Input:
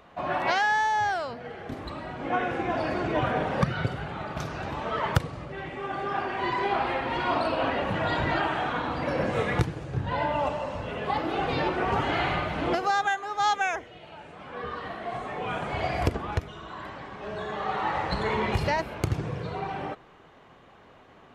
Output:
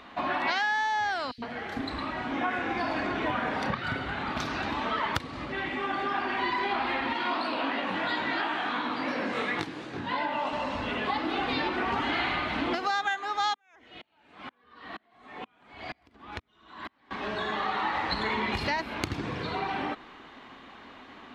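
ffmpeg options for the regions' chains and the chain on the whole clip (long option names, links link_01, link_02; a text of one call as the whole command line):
ffmpeg -i in.wav -filter_complex "[0:a]asettb=1/sr,asplit=3[link_01][link_02][link_03];[link_01]atrim=end=1.314[link_04];[link_02]atrim=start=1.31:end=4.29,asetpts=PTS-STARTPTS,afade=type=in:duration=0.004:curve=qsin,afade=type=out:start_time=2.976:duration=0.004:curve=qsin,asplit=2[link_05][link_06];[link_06]adelay=30,volume=-11.5dB[link_07];[link_05][link_07]amix=inputs=2:normalize=0,atrim=end_sample=131418,acrossover=split=290|3600[link_08][link_09][link_10];[link_08]adelay=70[link_11];[link_09]adelay=110[link_12];[link_11][link_12][link_10]amix=inputs=3:normalize=0,atrim=end_sample=131418[link_13];[link_03]atrim=start=4.286[link_14];[link_04][link_13]acrossfade=duration=0.004:curve1=hsin:curve2=qsin[link_15];[link_15][link_14]acrossfade=duration=0.004:curve1=qsin:curve2=hsin,asettb=1/sr,asplit=3[link_16][link_17][link_18];[link_16]atrim=end=7.134[link_19];[link_17]atrim=start=7.13:end=10.53,asetpts=PTS-STARTPTS,afade=type=in:duration=0.004:curve=qsin,afade=type=out:start_time=3.396:duration=0.004:curve=qsin,highpass=180,flanger=delay=16.5:depth=6:speed=2.9[link_20];[link_18]atrim=start=10.526[link_21];[link_19][link_20]acrossfade=duration=0.004:curve1=hsin:curve2=qsin[link_22];[link_22][link_21]acrossfade=duration=0.004:curve1=qsin:curve2=hsin,asettb=1/sr,asplit=3[link_23][link_24][link_25];[link_23]atrim=end=13.544[link_26];[link_24]atrim=start=13.54:end=17.11,asetpts=PTS-STARTPTS,afade=type=in:duration=0.004:curve=qsin,afade=type=out:start_time=3.566:duration=0.004:curve=qsin,acompressor=threshold=-39dB:ratio=2.5:attack=3.2:release=140:knee=1:detection=peak,aeval=exprs='val(0)*pow(10,-39*if(lt(mod(-2.1*n/s,1),2*abs(-2.1)/1000),1-mod(-2.1*n/s,1)/(2*abs(-2.1)/1000),(mod(-2.1*n/s,1)-2*abs(-2.1)/1000)/(1-2*abs(-2.1)/1000))/20)':channel_layout=same[link_27];[link_25]atrim=start=17.106[link_28];[link_26][link_27]acrossfade=duration=0.004:curve1=hsin:curve2=qsin[link_29];[link_29][link_28]acrossfade=duration=0.004:curve1=qsin:curve2=hsin,equalizer=frequency=125:width_type=o:width=1:gain=-5,equalizer=frequency=250:width_type=o:width=1:gain=12,equalizer=frequency=500:width_type=o:width=1:gain=-4,equalizer=frequency=1000:width_type=o:width=1:gain=5,equalizer=frequency=2000:width_type=o:width=1:gain=6,equalizer=frequency=4000:width_type=o:width=1:gain=10,acompressor=threshold=-28dB:ratio=3,equalizer=frequency=170:width=2.4:gain=-5" out.wav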